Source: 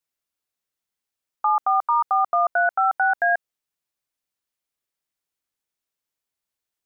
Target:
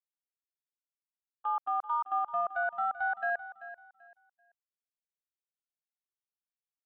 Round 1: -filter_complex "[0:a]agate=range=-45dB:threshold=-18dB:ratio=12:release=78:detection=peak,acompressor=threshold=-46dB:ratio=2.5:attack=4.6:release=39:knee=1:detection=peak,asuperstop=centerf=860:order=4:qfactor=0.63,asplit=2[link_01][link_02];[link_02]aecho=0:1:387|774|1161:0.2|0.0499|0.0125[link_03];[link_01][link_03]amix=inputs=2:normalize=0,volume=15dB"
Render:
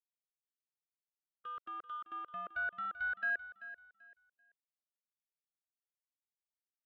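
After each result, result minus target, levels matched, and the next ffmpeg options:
1,000 Hz band −5.5 dB; downward compressor: peak gain reduction −4.5 dB
-filter_complex "[0:a]agate=range=-45dB:threshold=-18dB:ratio=12:release=78:detection=peak,acompressor=threshold=-46dB:ratio=2.5:attack=4.6:release=39:knee=1:detection=peak,asplit=2[link_01][link_02];[link_02]aecho=0:1:387|774|1161:0.2|0.0499|0.0125[link_03];[link_01][link_03]amix=inputs=2:normalize=0,volume=15dB"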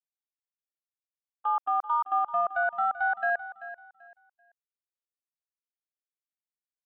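downward compressor: peak gain reduction −4.5 dB
-filter_complex "[0:a]agate=range=-45dB:threshold=-18dB:ratio=12:release=78:detection=peak,acompressor=threshold=-53.5dB:ratio=2.5:attack=4.6:release=39:knee=1:detection=peak,asplit=2[link_01][link_02];[link_02]aecho=0:1:387|774|1161:0.2|0.0499|0.0125[link_03];[link_01][link_03]amix=inputs=2:normalize=0,volume=15dB"

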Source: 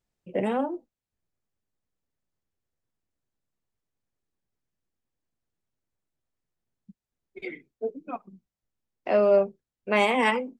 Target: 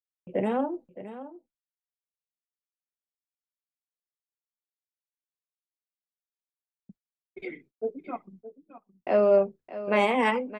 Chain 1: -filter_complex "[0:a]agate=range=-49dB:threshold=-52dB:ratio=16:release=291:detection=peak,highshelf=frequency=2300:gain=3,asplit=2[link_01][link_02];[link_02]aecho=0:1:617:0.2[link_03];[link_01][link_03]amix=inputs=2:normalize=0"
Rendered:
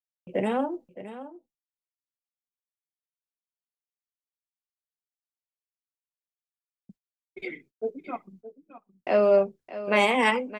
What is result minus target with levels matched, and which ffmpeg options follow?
4,000 Hz band +5.0 dB
-filter_complex "[0:a]agate=range=-49dB:threshold=-52dB:ratio=16:release=291:detection=peak,highshelf=frequency=2300:gain=-6.5,asplit=2[link_01][link_02];[link_02]aecho=0:1:617:0.2[link_03];[link_01][link_03]amix=inputs=2:normalize=0"

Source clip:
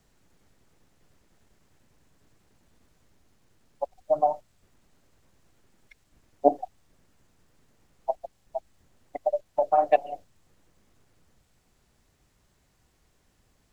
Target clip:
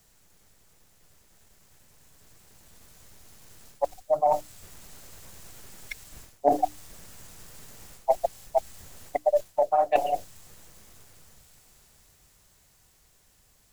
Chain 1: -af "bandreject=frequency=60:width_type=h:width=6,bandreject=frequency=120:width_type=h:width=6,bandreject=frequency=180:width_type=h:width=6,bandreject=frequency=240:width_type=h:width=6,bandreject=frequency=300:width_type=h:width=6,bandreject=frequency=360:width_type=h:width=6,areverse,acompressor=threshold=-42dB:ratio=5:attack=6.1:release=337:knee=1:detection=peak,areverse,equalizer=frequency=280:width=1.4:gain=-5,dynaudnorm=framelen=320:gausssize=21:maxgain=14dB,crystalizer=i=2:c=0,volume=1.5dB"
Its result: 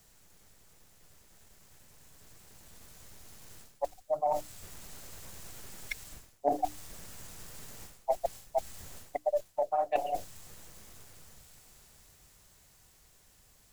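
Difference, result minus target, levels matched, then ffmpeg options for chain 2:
downward compressor: peak gain reduction +7 dB
-af "bandreject=frequency=60:width_type=h:width=6,bandreject=frequency=120:width_type=h:width=6,bandreject=frequency=180:width_type=h:width=6,bandreject=frequency=240:width_type=h:width=6,bandreject=frequency=300:width_type=h:width=6,bandreject=frequency=360:width_type=h:width=6,areverse,acompressor=threshold=-33dB:ratio=5:attack=6.1:release=337:knee=1:detection=peak,areverse,equalizer=frequency=280:width=1.4:gain=-5,dynaudnorm=framelen=320:gausssize=21:maxgain=14dB,crystalizer=i=2:c=0,volume=1.5dB"

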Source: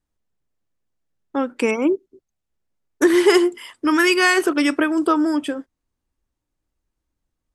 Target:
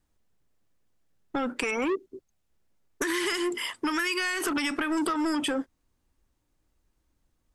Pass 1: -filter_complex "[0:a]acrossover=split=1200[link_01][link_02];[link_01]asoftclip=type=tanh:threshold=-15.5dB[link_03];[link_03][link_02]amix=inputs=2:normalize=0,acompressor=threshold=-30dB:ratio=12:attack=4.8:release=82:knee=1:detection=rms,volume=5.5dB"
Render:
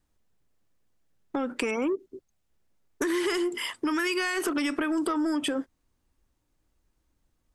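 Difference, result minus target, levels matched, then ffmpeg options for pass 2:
soft clipping: distortion −7 dB
-filter_complex "[0:a]acrossover=split=1200[link_01][link_02];[link_01]asoftclip=type=tanh:threshold=-26.5dB[link_03];[link_03][link_02]amix=inputs=2:normalize=0,acompressor=threshold=-30dB:ratio=12:attack=4.8:release=82:knee=1:detection=rms,volume=5.5dB"

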